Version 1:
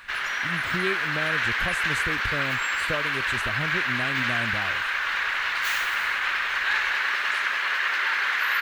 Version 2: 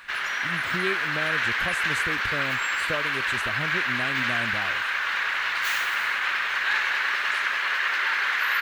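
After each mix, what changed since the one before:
speech: add low shelf 85 Hz -10 dB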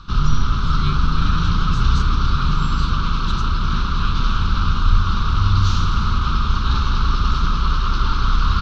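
background: remove resonant high-pass 1700 Hz, resonance Q 3.7; master: add EQ curve 150 Hz 0 dB, 670 Hz -22 dB, 1300 Hz +11 dB, 1900 Hz -15 dB, 3700 Hz +7 dB, 5800 Hz +6 dB, 9800 Hz -26 dB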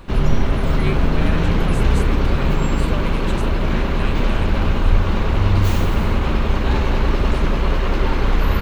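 master: remove EQ curve 150 Hz 0 dB, 670 Hz -22 dB, 1300 Hz +11 dB, 1900 Hz -15 dB, 3700 Hz +7 dB, 5800 Hz +6 dB, 9800 Hz -26 dB

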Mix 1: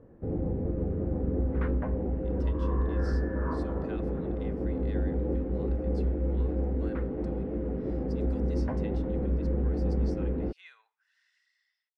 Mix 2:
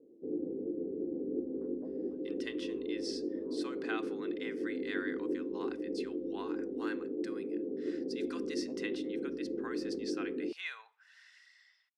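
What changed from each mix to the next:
speech +12.0 dB; background: add Butterworth band-pass 350 Hz, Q 2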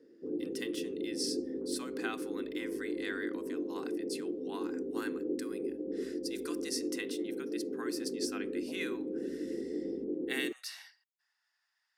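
speech: entry -1.85 s; master: remove LPF 4000 Hz 12 dB/oct

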